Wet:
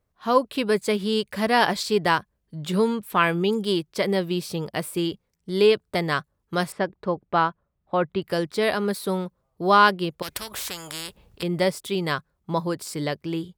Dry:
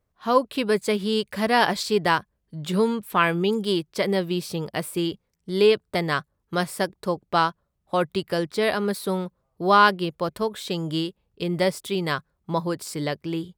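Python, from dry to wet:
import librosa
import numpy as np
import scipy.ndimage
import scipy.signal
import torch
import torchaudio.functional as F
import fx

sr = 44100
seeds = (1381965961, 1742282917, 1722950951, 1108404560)

y = fx.lowpass(x, sr, hz=2500.0, slope=12, at=(6.72, 8.22))
y = fx.spectral_comp(y, sr, ratio=4.0, at=(10.22, 11.43))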